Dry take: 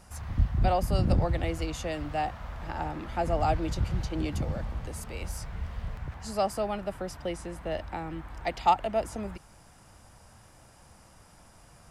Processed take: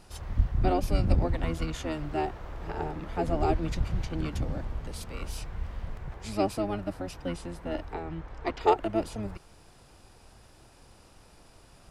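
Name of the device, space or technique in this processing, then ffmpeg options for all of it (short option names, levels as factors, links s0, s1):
octave pedal: -filter_complex "[0:a]asplit=2[s0][s1];[s1]asetrate=22050,aresample=44100,atempo=2,volume=1[s2];[s0][s2]amix=inputs=2:normalize=0,asettb=1/sr,asplit=3[s3][s4][s5];[s3]atrim=end=7.944[s6];[s4]atrim=start=7.94:end=8.61,asetpts=PTS-STARTPTS,afade=t=in:d=0.004:c=qsin,afade=t=out:st=0.666:d=0.004:c=qsin,lowpass=6500[s7];[s5]atrim=start=8.606[s8];[s6][s7]acrossfade=d=0.004:c1=hsin:c2=qsin[s9];[s9][s8]acrossfade=d=0.004:c1=qsin:c2=hsin,volume=0.708"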